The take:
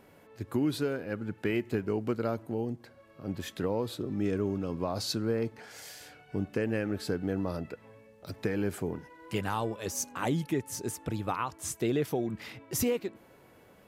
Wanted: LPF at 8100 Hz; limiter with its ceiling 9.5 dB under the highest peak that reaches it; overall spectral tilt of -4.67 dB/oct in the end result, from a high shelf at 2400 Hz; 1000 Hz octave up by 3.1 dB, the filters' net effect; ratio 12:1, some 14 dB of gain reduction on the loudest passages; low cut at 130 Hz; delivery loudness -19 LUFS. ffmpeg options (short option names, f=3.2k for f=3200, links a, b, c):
-af "highpass=130,lowpass=8.1k,equalizer=f=1k:t=o:g=4.5,highshelf=f=2.4k:g=-4,acompressor=threshold=-39dB:ratio=12,volume=28dB,alimiter=limit=-7.5dB:level=0:latency=1"